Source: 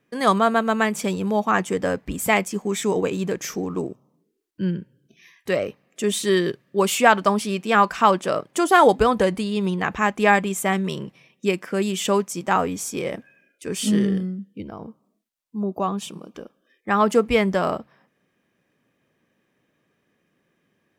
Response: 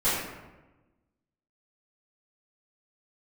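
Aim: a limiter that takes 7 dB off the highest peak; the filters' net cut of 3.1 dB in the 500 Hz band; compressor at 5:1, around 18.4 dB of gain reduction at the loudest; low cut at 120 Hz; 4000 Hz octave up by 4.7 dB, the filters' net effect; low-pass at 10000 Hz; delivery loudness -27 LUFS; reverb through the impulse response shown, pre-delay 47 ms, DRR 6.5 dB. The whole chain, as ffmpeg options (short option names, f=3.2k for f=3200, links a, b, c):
-filter_complex "[0:a]highpass=120,lowpass=10k,equalizer=f=500:t=o:g=-4,equalizer=f=4k:t=o:g=6.5,acompressor=threshold=-32dB:ratio=5,alimiter=level_in=0.5dB:limit=-24dB:level=0:latency=1,volume=-0.5dB,asplit=2[a][b];[1:a]atrim=start_sample=2205,adelay=47[c];[b][c]afir=irnorm=-1:irlink=0,volume=-20dB[d];[a][d]amix=inputs=2:normalize=0,volume=8dB"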